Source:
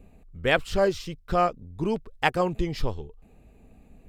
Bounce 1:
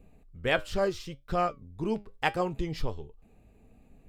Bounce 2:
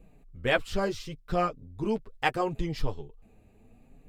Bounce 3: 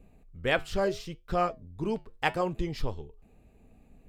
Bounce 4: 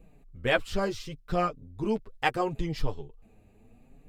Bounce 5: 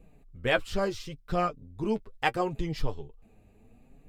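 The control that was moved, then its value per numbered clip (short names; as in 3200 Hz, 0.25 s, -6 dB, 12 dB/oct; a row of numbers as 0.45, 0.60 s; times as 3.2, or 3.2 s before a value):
flange, regen: +77, -15, -79, +7, +29%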